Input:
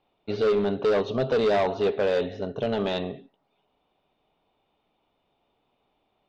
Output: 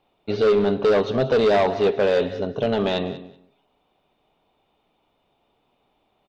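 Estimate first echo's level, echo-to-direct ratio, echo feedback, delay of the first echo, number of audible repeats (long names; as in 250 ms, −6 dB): −16.0 dB, −16.0 dB, 16%, 188 ms, 2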